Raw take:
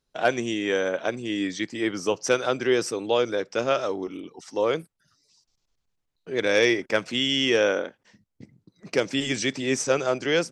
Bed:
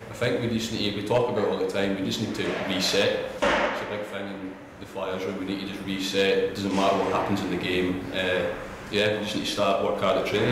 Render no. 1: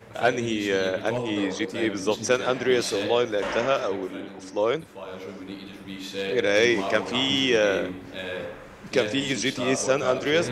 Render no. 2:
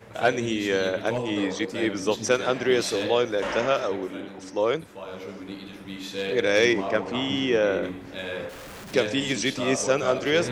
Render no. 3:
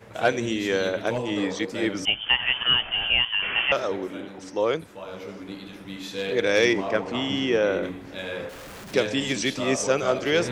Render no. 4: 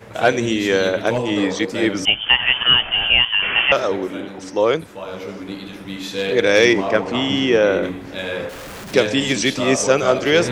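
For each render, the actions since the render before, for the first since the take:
add bed -7.5 dB
6.73–7.83 s: treble shelf 2.5 kHz -11 dB; 8.49–8.94 s: one-bit comparator
2.05–3.72 s: frequency inversion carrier 3.3 kHz
trim +7 dB; peak limiter -1 dBFS, peak gain reduction 1.5 dB

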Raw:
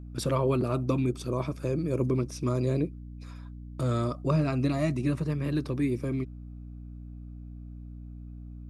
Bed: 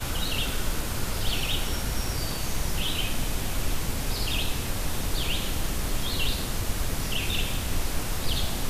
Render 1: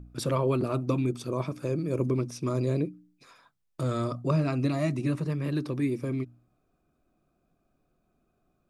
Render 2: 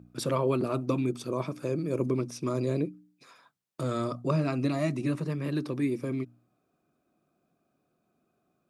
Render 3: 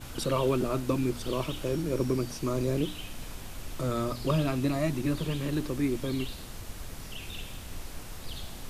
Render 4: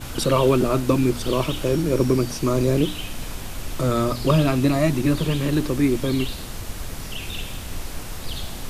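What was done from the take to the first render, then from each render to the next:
de-hum 60 Hz, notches 5
high-pass 140 Hz 12 dB/octave
add bed -12.5 dB
trim +9 dB

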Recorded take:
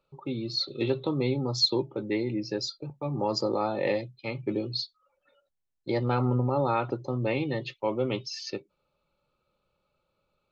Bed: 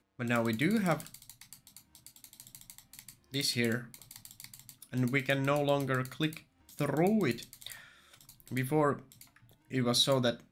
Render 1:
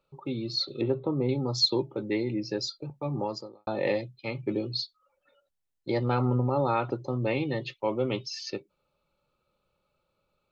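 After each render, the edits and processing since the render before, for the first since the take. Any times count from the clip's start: 0.81–1.29 s: low-pass 1.2 kHz; 3.17–3.67 s: fade out quadratic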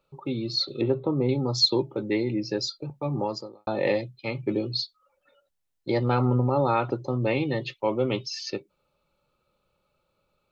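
trim +3 dB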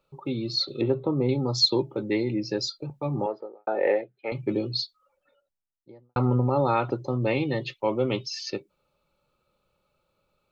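3.26–4.32 s: cabinet simulation 400–2200 Hz, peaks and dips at 430 Hz +8 dB, 730 Hz +5 dB, 1.1 kHz -9 dB, 1.5 kHz +7 dB; 4.83–6.16 s: studio fade out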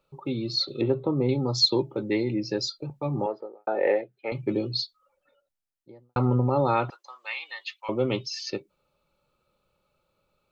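6.90–7.89 s: high-pass 1.1 kHz 24 dB/octave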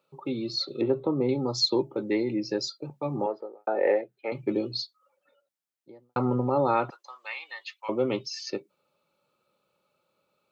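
high-pass 180 Hz 12 dB/octave; dynamic bell 3.3 kHz, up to -6 dB, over -46 dBFS, Q 1.4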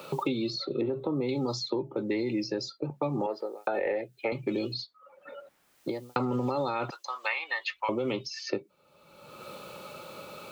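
peak limiter -21 dBFS, peak gain reduction 9 dB; three bands compressed up and down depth 100%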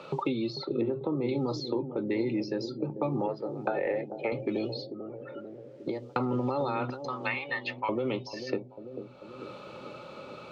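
distance through air 140 m; bucket-brigade echo 443 ms, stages 2048, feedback 65%, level -9.5 dB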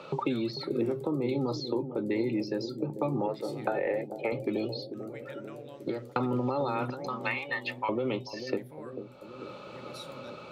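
add bed -19 dB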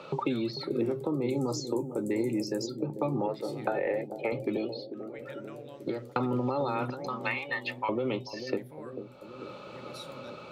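1.30–2.67 s: resonant high shelf 5.4 kHz +13 dB, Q 3; 4.57–5.19 s: three-band isolator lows -15 dB, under 160 Hz, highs -12 dB, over 4.3 kHz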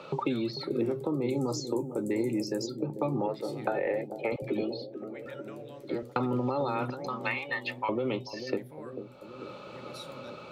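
4.36–6.03 s: phase dispersion lows, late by 65 ms, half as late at 400 Hz

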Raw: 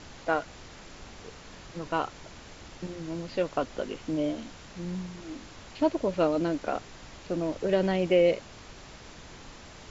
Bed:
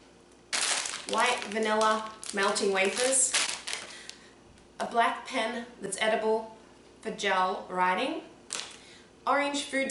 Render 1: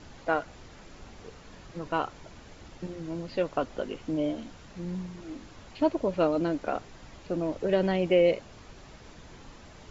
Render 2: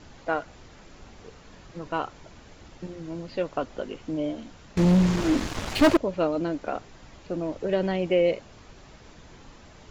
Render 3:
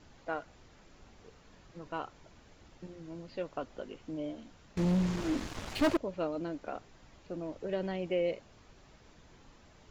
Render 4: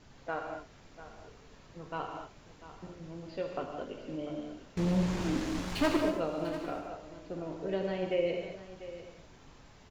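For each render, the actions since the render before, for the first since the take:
noise reduction 6 dB, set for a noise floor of -48 dBFS
4.77–5.97 s: waveshaping leveller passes 5
trim -9.5 dB
delay 695 ms -14.5 dB; gated-style reverb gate 260 ms flat, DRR 1.5 dB

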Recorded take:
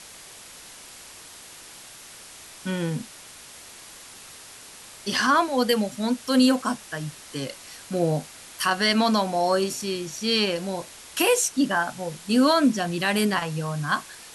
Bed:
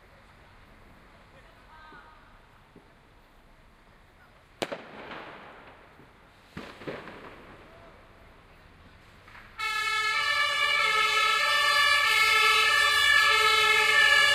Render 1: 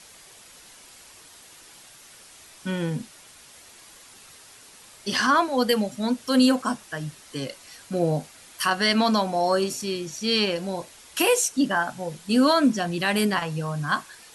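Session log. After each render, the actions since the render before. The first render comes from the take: noise reduction 6 dB, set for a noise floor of -45 dBFS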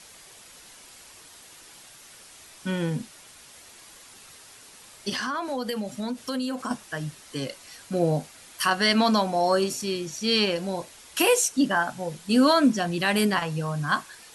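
5.09–6.71 s: compression, threshold -26 dBFS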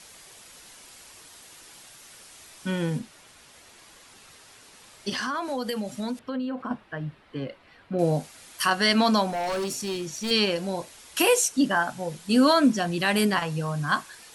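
2.98–5.16 s: treble shelf 4.2 kHz -> 7.9 kHz -7 dB; 6.19–7.99 s: distance through air 450 m; 9.30–10.31 s: overload inside the chain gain 26 dB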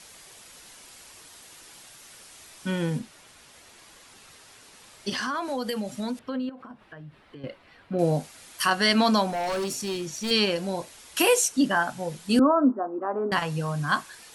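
6.49–7.44 s: compression 5:1, threshold -41 dBFS; 12.39–13.32 s: Chebyshev band-pass 250–1300 Hz, order 4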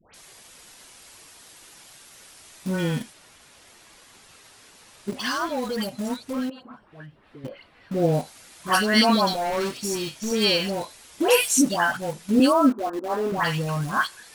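phase dispersion highs, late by 141 ms, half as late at 1.4 kHz; in parallel at -11 dB: bit crusher 5-bit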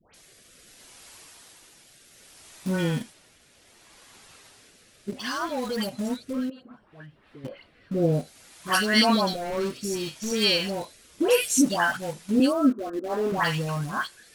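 rotary cabinet horn 0.65 Hz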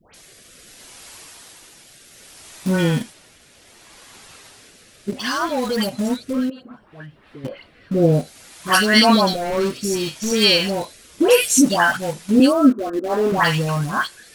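trim +7.5 dB; peak limiter -3 dBFS, peak gain reduction 2.5 dB

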